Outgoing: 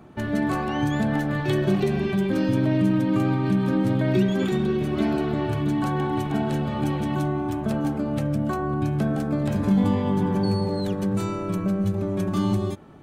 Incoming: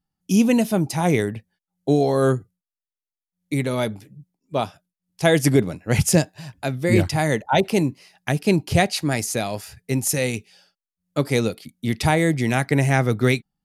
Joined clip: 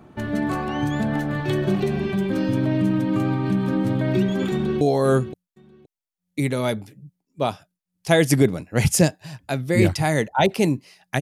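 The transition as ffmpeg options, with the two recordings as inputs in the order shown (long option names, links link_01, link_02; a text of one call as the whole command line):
ffmpeg -i cue0.wav -i cue1.wav -filter_complex "[0:a]apad=whole_dur=11.21,atrim=end=11.21,atrim=end=4.812[link_01];[1:a]atrim=start=1.948:end=8.35[link_02];[link_01][link_02]acrossfade=duration=0.004:curve1=hsin:curve2=hsin,asplit=2[link_03][link_04];[link_04]afade=type=in:start_time=4.52:duration=0.01,afade=type=out:start_time=4.81:duration=0.01,aecho=0:1:520|1040:0.281838|0.0422757[link_05];[link_03][link_05]amix=inputs=2:normalize=0" out.wav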